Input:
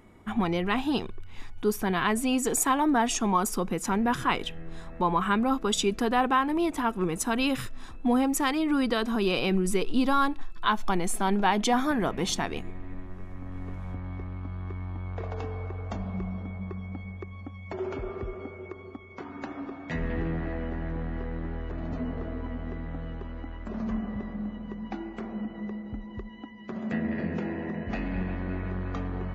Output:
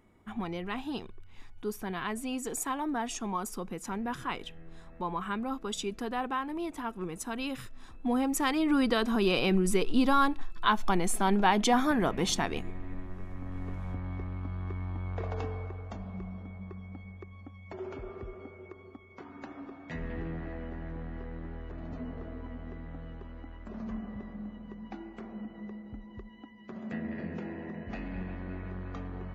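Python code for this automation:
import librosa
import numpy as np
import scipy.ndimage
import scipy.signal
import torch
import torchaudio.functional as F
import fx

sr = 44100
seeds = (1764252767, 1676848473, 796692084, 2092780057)

y = fx.gain(x, sr, db=fx.line((7.63, -9.0), (8.68, -0.5), (15.43, -0.5), (15.92, -7.0)))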